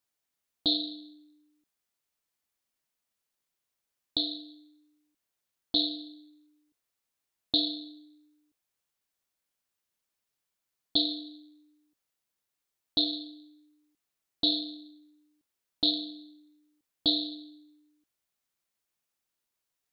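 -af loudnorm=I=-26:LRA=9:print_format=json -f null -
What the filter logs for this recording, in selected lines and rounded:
"input_i" : "-29.5",
"input_tp" : "-11.0",
"input_lra" : "3.5",
"input_thresh" : "-42.2",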